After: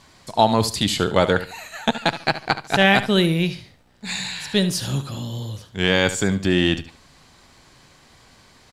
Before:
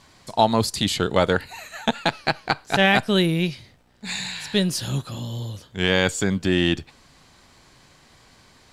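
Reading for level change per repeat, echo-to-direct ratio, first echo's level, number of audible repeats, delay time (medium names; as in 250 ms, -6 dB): -12.5 dB, -12.5 dB, -13.0 dB, 2, 72 ms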